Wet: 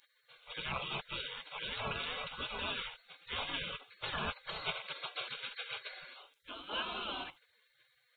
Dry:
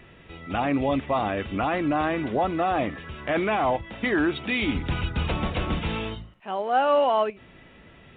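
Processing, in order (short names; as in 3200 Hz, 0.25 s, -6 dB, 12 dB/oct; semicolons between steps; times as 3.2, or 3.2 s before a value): fixed phaser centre 500 Hz, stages 6; spectral gate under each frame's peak -30 dB weak; gain +10 dB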